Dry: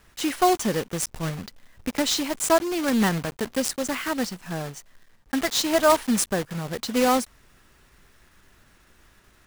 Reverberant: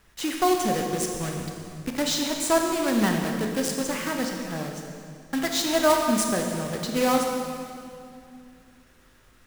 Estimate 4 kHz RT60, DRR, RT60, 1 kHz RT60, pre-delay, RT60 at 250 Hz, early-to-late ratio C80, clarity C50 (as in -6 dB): 2.1 s, 2.0 dB, 2.5 s, 2.3 s, 24 ms, 3.1 s, 4.0 dB, 3.0 dB